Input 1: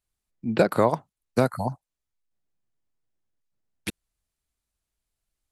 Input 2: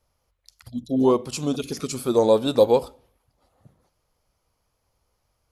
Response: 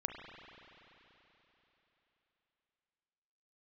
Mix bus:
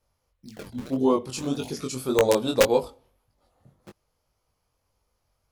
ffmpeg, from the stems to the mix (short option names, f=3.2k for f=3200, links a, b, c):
-filter_complex "[0:a]acompressor=threshold=-32dB:ratio=2.5,acrusher=samples=41:mix=1:aa=0.000001:lfo=1:lforange=65.6:lforate=1.7,volume=-8dB[a];[1:a]aeval=exprs='(mod(2.11*val(0)+1,2)-1)/2.11':c=same,volume=0.5dB[b];[a][b]amix=inputs=2:normalize=0,flanger=delay=19.5:depth=4.2:speed=1.8"